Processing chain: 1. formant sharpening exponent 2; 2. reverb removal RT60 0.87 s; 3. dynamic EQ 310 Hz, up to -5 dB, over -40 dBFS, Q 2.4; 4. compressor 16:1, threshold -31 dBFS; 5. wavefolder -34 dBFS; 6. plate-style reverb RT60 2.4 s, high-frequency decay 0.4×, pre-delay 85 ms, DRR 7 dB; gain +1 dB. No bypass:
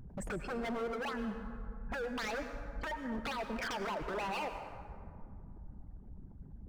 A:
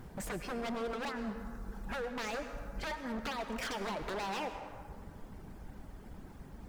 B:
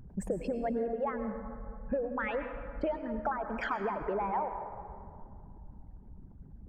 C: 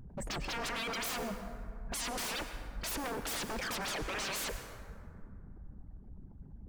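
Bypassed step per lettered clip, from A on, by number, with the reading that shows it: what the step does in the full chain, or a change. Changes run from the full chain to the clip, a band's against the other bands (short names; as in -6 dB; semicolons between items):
1, 8 kHz band +4.0 dB; 5, crest factor change +3.5 dB; 4, mean gain reduction 7.5 dB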